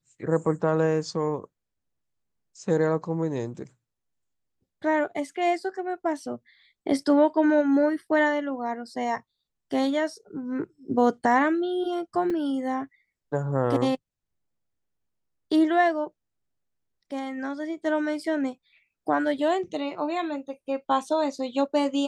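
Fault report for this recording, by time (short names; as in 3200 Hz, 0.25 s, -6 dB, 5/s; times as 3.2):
12.3 gap 3.5 ms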